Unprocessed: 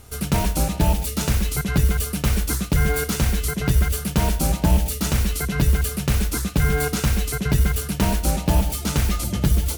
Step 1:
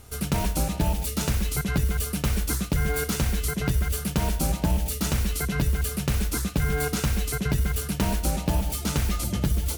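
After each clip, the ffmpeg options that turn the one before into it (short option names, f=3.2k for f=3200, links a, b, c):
-af "acompressor=threshold=-17dB:ratio=6,volume=-2.5dB"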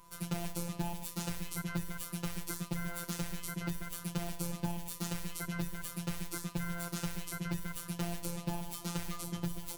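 -af "afftfilt=real='hypot(re,im)*cos(PI*b)':imag='0':win_size=1024:overlap=0.75,aeval=exprs='val(0)+0.00282*sin(2*PI*1000*n/s)':c=same,volume=-8dB"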